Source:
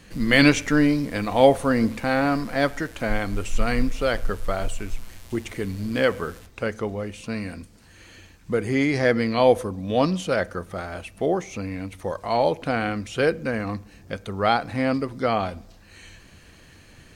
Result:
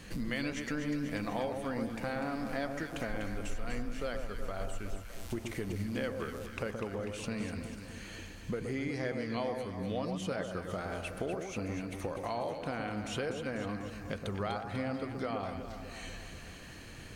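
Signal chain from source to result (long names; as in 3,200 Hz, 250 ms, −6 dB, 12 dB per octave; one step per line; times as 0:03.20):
downward compressor 6 to 1, threshold −35 dBFS, peak gain reduction 23 dB
on a send: delay that swaps between a low-pass and a high-pass 123 ms, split 1,300 Hz, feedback 77%, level −5.5 dB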